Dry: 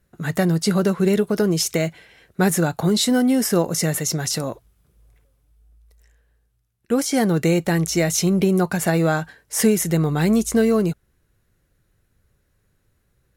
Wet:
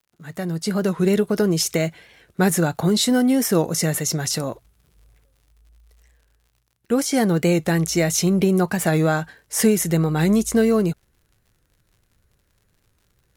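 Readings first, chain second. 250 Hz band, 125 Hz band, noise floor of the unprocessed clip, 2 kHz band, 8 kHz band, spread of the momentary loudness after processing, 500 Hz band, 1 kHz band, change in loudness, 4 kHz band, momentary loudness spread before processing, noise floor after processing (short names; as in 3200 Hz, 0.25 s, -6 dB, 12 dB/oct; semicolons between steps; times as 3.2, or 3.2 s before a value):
-0.5 dB, -0.5 dB, -67 dBFS, -0.5 dB, 0.0 dB, 8 LU, 0.0 dB, -0.5 dB, 0.0 dB, 0.0 dB, 7 LU, -67 dBFS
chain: opening faded in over 1.11 s; crackle 91/s -48 dBFS; record warp 45 rpm, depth 100 cents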